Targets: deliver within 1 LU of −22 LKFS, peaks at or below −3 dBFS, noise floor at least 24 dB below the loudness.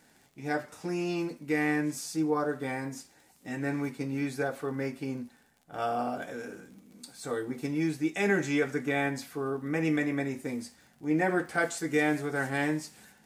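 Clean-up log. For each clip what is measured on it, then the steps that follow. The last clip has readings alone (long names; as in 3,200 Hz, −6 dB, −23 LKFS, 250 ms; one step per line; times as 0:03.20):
crackle rate 43 per second; integrated loudness −31.0 LKFS; sample peak −13.5 dBFS; target loudness −22.0 LKFS
→ click removal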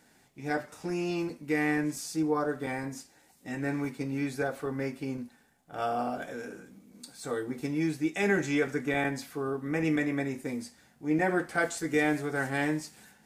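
crackle rate 0.075 per second; integrated loudness −31.5 LKFS; sample peak −13.5 dBFS; target loudness −22.0 LKFS
→ level +9.5 dB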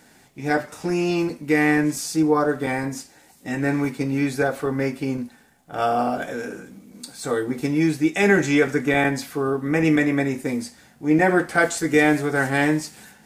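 integrated loudness −22.0 LKFS; sample peak −4.0 dBFS; background noise floor −54 dBFS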